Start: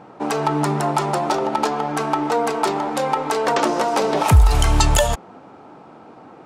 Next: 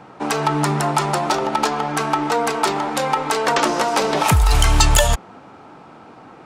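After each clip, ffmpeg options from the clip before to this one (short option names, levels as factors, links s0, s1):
-filter_complex "[0:a]lowshelf=f=140:g=8.5,acrossover=split=220|1100[s0][s1][s2];[s0]alimiter=limit=0.398:level=0:latency=1[s3];[s2]acontrast=82[s4];[s3][s1][s4]amix=inputs=3:normalize=0,volume=0.794"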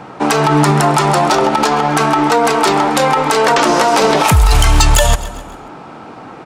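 -af "asoftclip=type=hard:threshold=0.531,aecho=1:1:134|268|402|536:0.0944|0.0463|0.0227|0.0111,alimiter=level_in=3.35:limit=0.891:release=50:level=0:latency=1,volume=0.891"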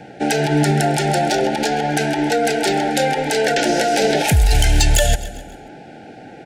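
-af "asuperstop=centerf=1100:order=20:qfactor=2,volume=0.631"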